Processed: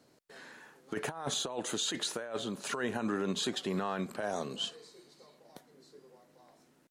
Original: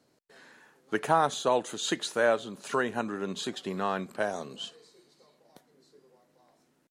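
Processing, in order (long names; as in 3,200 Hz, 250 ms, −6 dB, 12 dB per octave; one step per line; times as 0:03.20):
compressor whose output falls as the input rises −30 dBFS, ratio −0.5
brickwall limiter −23.5 dBFS, peak gain reduction 10 dB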